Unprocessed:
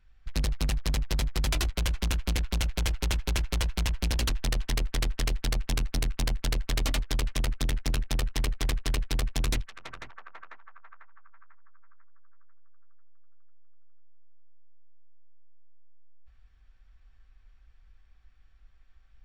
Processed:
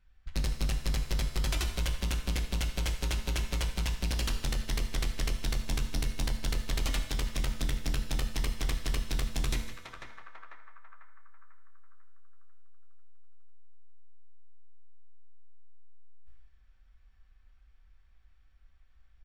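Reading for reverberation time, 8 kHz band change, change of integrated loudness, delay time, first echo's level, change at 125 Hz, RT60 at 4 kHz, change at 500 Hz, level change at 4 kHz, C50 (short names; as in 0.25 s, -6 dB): 0.90 s, -3.0 dB, -3.0 dB, 0.155 s, -17.5 dB, -3.0 dB, 0.90 s, -3.5 dB, -3.0 dB, 8.0 dB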